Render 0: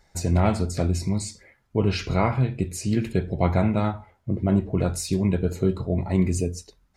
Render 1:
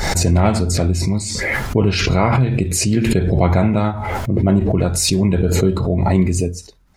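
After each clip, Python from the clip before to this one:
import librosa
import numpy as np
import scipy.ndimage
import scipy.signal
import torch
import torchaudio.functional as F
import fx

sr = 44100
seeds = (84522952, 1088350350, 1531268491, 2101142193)

y = fx.pre_swell(x, sr, db_per_s=24.0)
y = F.gain(torch.from_numpy(y), 5.5).numpy()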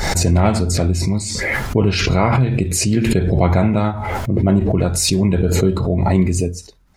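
y = x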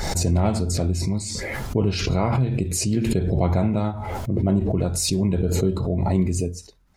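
y = fx.dynamic_eq(x, sr, hz=1800.0, q=1.0, threshold_db=-36.0, ratio=4.0, max_db=-7)
y = F.gain(torch.from_numpy(y), -5.5).numpy()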